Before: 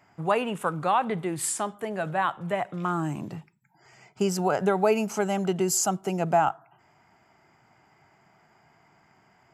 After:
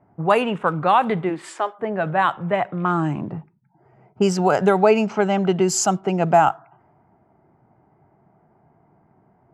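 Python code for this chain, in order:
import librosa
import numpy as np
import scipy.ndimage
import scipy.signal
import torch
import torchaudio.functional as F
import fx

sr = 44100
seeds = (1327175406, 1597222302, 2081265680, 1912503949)

y = fx.lowpass(x, sr, hz=4900.0, slope=12, at=(4.77, 5.69))
y = fx.env_lowpass(y, sr, base_hz=610.0, full_db=-18.5)
y = fx.highpass(y, sr, hz=fx.line((1.29, 180.0), (1.78, 500.0)), slope=24, at=(1.29, 1.78), fade=0.02)
y = F.gain(torch.from_numpy(y), 7.0).numpy()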